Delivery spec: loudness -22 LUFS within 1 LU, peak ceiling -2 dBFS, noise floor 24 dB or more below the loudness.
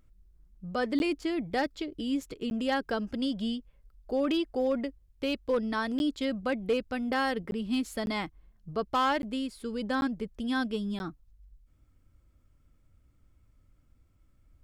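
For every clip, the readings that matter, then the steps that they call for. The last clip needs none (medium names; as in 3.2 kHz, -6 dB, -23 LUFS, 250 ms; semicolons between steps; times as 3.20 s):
clipped samples 0.2%; clipping level -20.5 dBFS; dropouts 8; longest dropout 11 ms; loudness -31.5 LUFS; peak level -20.5 dBFS; loudness target -22.0 LUFS
-> clip repair -20.5 dBFS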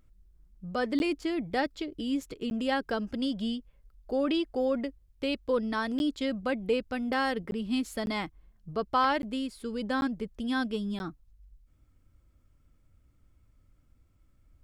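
clipped samples 0.0%; dropouts 8; longest dropout 11 ms
-> interpolate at 0.99/2.50/5.99/7.51/8.06/9.22/10.01/10.99 s, 11 ms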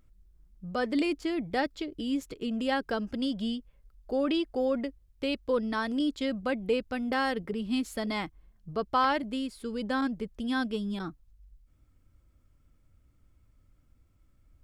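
dropouts 0; loudness -31.0 LUFS; peak level -12.0 dBFS; loudness target -22.0 LUFS
-> trim +9 dB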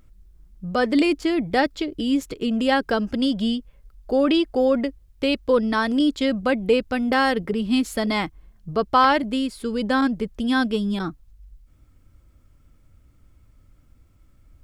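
loudness -22.0 LUFS; peak level -3.0 dBFS; noise floor -56 dBFS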